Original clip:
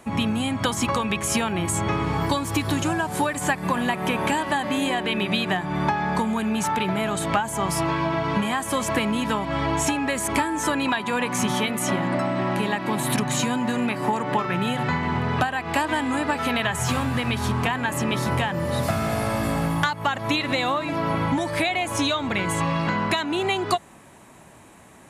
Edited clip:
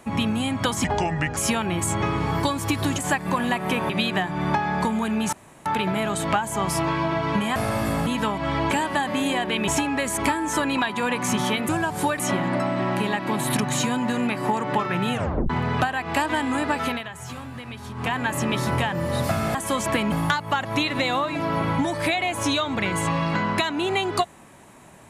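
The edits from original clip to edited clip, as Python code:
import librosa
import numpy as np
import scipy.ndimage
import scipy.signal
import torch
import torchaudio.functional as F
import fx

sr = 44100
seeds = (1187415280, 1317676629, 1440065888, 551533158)

y = fx.edit(x, sr, fx.speed_span(start_s=0.84, length_s=0.39, speed=0.74),
    fx.move(start_s=2.85, length_s=0.51, to_s=11.79),
    fx.move(start_s=4.27, length_s=0.97, to_s=9.78),
    fx.insert_room_tone(at_s=6.67, length_s=0.33),
    fx.swap(start_s=8.57, length_s=0.57, other_s=19.14, other_length_s=0.51),
    fx.tape_stop(start_s=14.72, length_s=0.37),
    fx.fade_down_up(start_s=16.44, length_s=1.29, db=-12.0, fade_s=0.19), tone=tone)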